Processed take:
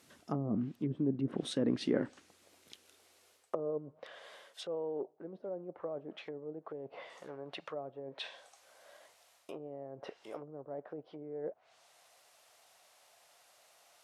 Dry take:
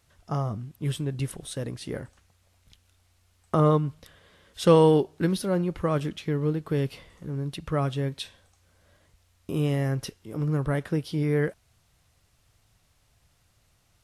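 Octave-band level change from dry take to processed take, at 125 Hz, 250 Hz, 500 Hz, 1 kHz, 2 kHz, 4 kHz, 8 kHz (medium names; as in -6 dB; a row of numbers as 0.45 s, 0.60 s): -18.5 dB, -10.0 dB, -12.5 dB, -17.0 dB, -12.0 dB, -9.0 dB, -13.5 dB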